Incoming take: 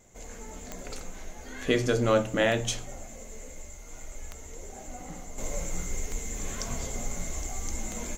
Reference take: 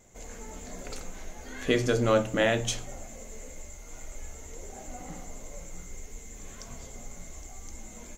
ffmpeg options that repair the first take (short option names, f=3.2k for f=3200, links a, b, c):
-af "adeclick=t=4,asetnsamples=n=441:p=0,asendcmd='5.38 volume volume -9.5dB',volume=0dB"